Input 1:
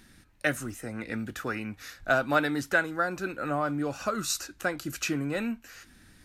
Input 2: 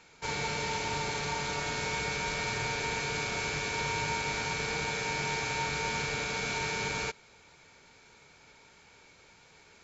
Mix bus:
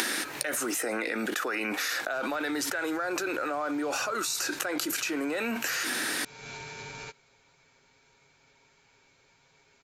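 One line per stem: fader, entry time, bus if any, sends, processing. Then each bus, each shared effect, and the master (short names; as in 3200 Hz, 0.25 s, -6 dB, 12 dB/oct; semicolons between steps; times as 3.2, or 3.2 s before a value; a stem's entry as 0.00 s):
+0.5 dB, 0.00 s, no send, HPF 340 Hz 24 dB/oct; fast leveller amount 100%
-7.0 dB, 0.00 s, muted 0.76–2.12, no send, comb 7.4 ms, depth 52%; limiter -25.5 dBFS, peak gain reduction 6 dB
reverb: off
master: compressor 3:1, threshold -32 dBFS, peak gain reduction 12.5 dB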